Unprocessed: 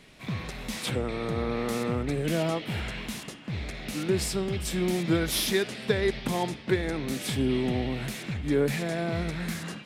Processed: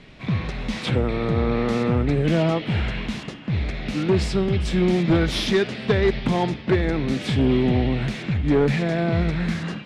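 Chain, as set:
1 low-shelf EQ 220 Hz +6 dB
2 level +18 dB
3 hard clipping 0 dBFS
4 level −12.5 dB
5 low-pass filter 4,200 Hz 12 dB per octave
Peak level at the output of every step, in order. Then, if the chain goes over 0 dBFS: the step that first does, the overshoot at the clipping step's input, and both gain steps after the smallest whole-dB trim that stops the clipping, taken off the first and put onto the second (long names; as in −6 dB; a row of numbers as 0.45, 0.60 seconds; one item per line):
−10.0, +8.0, 0.0, −12.5, −12.0 dBFS
step 2, 8.0 dB
step 2 +10 dB, step 4 −4.5 dB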